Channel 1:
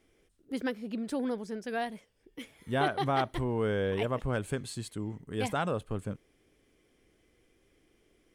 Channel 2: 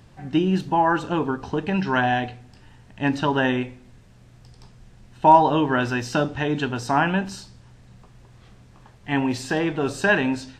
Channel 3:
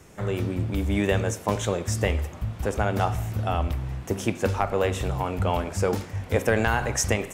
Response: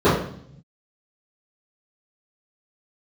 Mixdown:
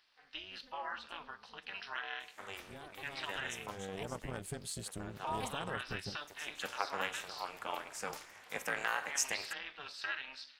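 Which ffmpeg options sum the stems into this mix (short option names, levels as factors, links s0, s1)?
-filter_complex "[0:a]acompressor=threshold=0.0126:ratio=2,highshelf=f=4300:g=10.5,volume=0.891,afade=t=in:st=2.4:d=0.32:silence=0.266073,afade=t=in:st=3.66:d=0.37:silence=0.281838,asplit=2[s0][s1];[1:a]highpass=1500,highshelf=f=5800:t=q:w=3:g=-7.5,acompressor=threshold=0.0355:ratio=2,volume=0.447[s2];[2:a]highpass=1000,adelay=2200,volume=0.631[s3];[s1]apad=whole_len=420474[s4];[s3][s4]sidechaincompress=threshold=0.00355:ratio=8:attack=40:release=592[s5];[s0][s2][s5]amix=inputs=3:normalize=0,tremolo=f=290:d=0.919"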